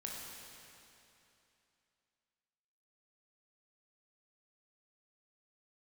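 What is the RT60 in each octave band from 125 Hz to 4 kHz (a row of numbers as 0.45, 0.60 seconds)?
2.9, 2.9, 2.9, 2.9, 2.8, 2.7 seconds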